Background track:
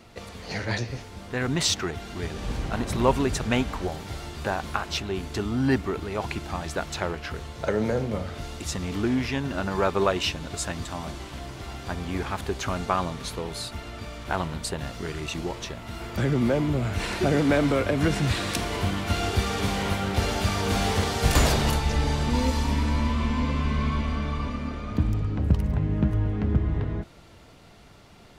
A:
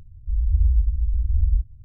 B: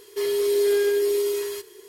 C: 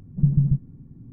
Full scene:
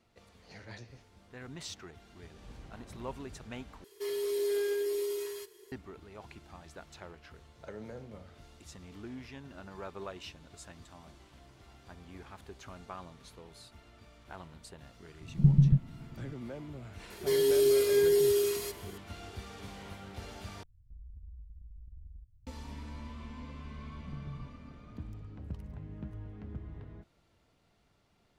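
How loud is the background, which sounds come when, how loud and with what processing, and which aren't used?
background track −19.5 dB
0:03.84: overwrite with B −10.5 dB
0:15.21: mix in C −3 dB
0:17.10: mix in B −2 dB + phaser whose notches keep moving one way falling 1.3 Hz
0:20.63: overwrite with A −18 dB + downward compressor, threshold −28 dBFS
0:23.90: mix in C −11.5 dB + downward compressor, threshold −29 dBFS

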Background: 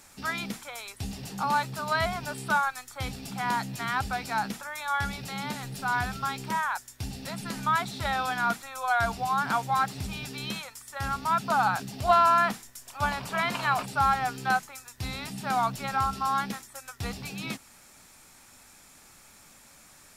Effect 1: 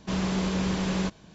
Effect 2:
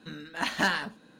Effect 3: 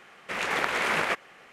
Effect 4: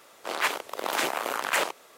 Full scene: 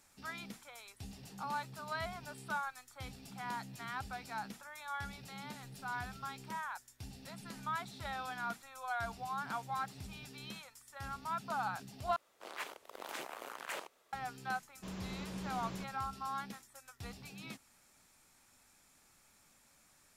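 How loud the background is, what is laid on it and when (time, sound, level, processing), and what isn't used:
background −13 dB
0:12.16: overwrite with 4 −17 dB + low-shelf EQ 63 Hz +12 dB
0:14.75: mix in 1 −17 dB
not used: 2, 3

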